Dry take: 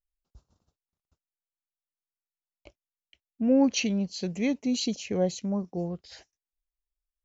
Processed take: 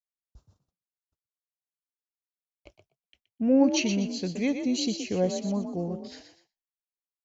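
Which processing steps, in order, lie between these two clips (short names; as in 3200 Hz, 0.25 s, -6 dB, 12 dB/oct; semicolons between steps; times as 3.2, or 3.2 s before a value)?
frequency-shifting echo 0.122 s, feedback 33%, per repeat +41 Hz, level -8 dB; expander -60 dBFS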